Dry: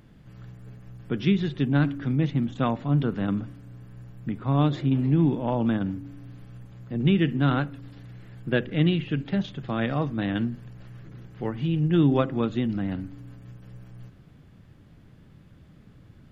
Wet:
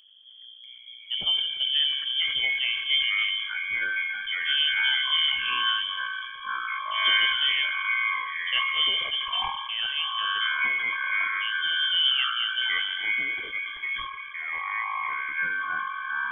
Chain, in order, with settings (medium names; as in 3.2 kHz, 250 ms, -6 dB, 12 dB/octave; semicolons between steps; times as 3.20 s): resonances exaggerated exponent 1.5; on a send at -15 dB: reverberation RT60 1.6 s, pre-delay 3 ms; on the sum: frequency inversion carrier 3.3 kHz; ever faster or slower copies 639 ms, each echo -6 st, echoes 3; decay stretcher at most 46 dB/s; trim -4.5 dB